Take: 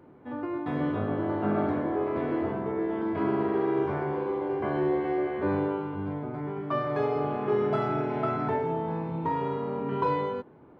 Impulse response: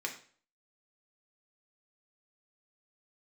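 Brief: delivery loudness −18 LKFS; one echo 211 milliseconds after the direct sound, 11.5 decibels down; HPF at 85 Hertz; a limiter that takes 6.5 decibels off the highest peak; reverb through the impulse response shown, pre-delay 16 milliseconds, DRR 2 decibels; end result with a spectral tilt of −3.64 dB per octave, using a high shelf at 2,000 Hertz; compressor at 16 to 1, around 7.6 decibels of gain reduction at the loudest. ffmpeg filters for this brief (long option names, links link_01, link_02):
-filter_complex "[0:a]highpass=85,highshelf=frequency=2000:gain=6.5,acompressor=threshold=-29dB:ratio=16,alimiter=level_in=2.5dB:limit=-24dB:level=0:latency=1,volume=-2.5dB,aecho=1:1:211:0.266,asplit=2[link_01][link_02];[1:a]atrim=start_sample=2205,adelay=16[link_03];[link_02][link_03]afir=irnorm=-1:irlink=0,volume=-5dB[link_04];[link_01][link_04]amix=inputs=2:normalize=0,volume=16dB"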